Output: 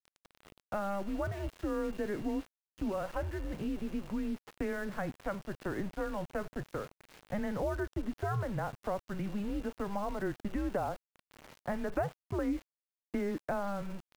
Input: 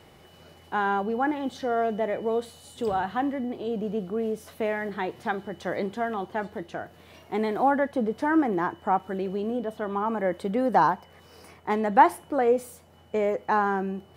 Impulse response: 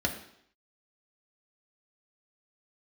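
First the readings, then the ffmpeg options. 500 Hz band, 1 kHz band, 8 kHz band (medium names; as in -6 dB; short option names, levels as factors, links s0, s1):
-10.0 dB, -16.0 dB, no reading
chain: -filter_complex "[0:a]acrossover=split=420|2000[s0][s1][s2];[s0]acompressor=threshold=0.01:ratio=4[s3];[s1]acompressor=threshold=0.0158:ratio=4[s4];[s2]acompressor=threshold=0.00282:ratio=4[s5];[s3][s4][s5]amix=inputs=3:normalize=0,highpass=f=170:t=q:w=0.5412,highpass=f=170:t=q:w=1.307,lowpass=f=2900:t=q:w=0.5176,lowpass=f=2900:t=q:w=0.7071,lowpass=f=2900:t=q:w=1.932,afreqshift=-200,aeval=exprs='val(0)*gte(abs(val(0)),0.00531)':c=same"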